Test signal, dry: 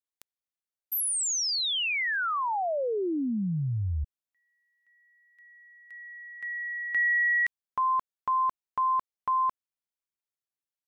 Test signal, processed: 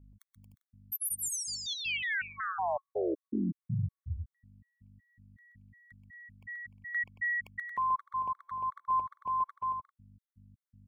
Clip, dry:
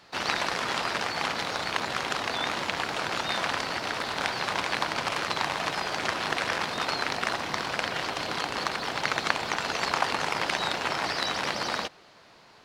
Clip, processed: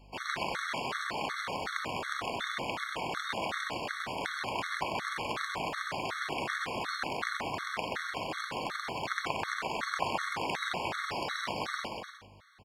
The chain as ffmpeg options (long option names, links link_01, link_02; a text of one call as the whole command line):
ffmpeg -i in.wav -filter_complex "[0:a]equalizer=frequency=4900:width_type=o:width=1.1:gain=-5.5,aeval=exprs='val(0)+0.00282*(sin(2*PI*50*n/s)+sin(2*PI*2*50*n/s)/2+sin(2*PI*3*50*n/s)/3+sin(2*PI*4*50*n/s)/4+sin(2*PI*5*50*n/s)/5)':channel_layout=same,asplit=2[link_01][link_02];[link_02]aecho=0:1:130|227.5|300.6|355.5|396.6:0.631|0.398|0.251|0.158|0.1[link_03];[link_01][link_03]amix=inputs=2:normalize=0,afftfilt=real='re*gt(sin(2*PI*2.7*pts/sr)*(1-2*mod(floor(b*sr/1024/1100),2)),0)':imag='im*gt(sin(2*PI*2.7*pts/sr)*(1-2*mod(floor(b*sr/1024/1100),2)),0)':win_size=1024:overlap=0.75,volume=-4dB" out.wav